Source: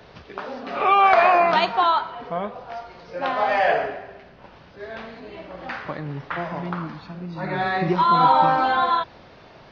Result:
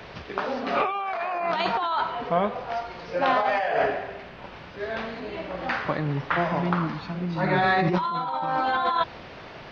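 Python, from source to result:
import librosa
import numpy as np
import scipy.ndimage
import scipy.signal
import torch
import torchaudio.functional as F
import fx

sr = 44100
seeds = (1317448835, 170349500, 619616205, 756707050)

y = fx.dmg_noise_band(x, sr, seeds[0], low_hz=300.0, high_hz=2800.0, level_db=-53.0)
y = fx.over_compress(y, sr, threshold_db=-24.0, ratio=-1.0)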